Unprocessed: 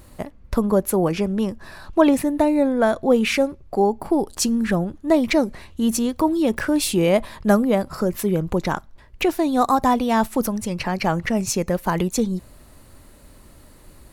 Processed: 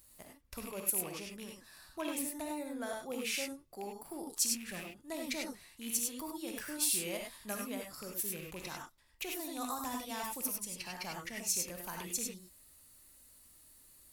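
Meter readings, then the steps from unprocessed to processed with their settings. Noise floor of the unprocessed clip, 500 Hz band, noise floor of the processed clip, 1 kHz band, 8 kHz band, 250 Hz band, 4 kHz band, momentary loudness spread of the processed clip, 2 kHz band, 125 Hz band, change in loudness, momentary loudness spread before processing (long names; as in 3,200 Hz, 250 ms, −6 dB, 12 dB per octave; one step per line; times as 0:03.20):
−48 dBFS, −23.5 dB, −62 dBFS, −21.0 dB, −5.0 dB, −23.5 dB, −10.0 dB, 13 LU, −15.0 dB, −26.0 dB, −16.5 dB, 8 LU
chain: loose part that buzzes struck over −22 dBFS, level −21 dBFS
first-order pre-emphasis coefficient 0.9
reverb whose tail is shaped and stops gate 120 ms rising, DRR 0.5 dB
level −7.5 dB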